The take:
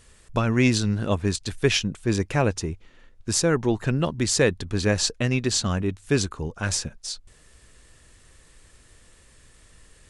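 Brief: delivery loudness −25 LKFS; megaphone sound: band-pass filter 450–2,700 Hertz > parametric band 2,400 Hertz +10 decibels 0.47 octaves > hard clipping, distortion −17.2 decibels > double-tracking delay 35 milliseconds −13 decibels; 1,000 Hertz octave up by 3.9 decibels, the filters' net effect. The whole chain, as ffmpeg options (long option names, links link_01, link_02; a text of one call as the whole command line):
ffmpeg -i in.wav -filter_complex "[0:a]highpass=450,lowpass=2700,equalizer=frequency=1000:width_type=o:gain=5,equalizer=frequency=2400:width_type=o:width=0.47:gain=10,asoftclip=type=hard:threshold=-12.5dB,asplit=2[link_01][link_02];[link_02]adelay=35,volume=-13dB[link_03];[link_01][link_03]amix=inputs=2:normalize=0,volume=1.5dB" out.wav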